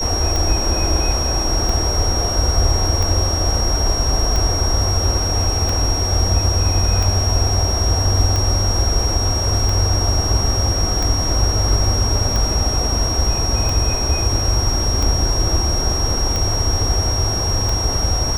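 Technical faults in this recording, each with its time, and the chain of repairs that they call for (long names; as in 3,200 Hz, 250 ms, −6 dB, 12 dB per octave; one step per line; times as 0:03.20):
scratch tick 45 rpm
whistle 5,600 Hz −21 dBFS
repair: click removal
notch filter 5,600 Hz, Q 30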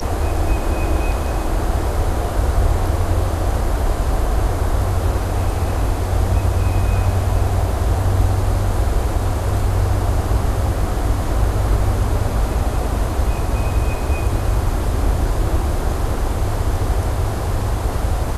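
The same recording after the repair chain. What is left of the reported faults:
none of them is left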